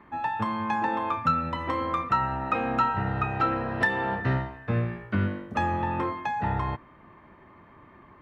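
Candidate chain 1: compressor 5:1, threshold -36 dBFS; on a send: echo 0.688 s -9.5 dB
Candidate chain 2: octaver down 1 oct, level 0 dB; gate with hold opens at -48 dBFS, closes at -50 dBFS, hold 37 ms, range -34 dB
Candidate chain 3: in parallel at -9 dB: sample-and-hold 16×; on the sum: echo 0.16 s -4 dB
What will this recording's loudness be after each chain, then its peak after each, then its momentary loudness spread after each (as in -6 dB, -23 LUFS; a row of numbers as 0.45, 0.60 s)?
-38.5, -27.0, -24.5 LUFS; -24.0, -11.5, -9.5 dBFS; 10, 4, 4 LU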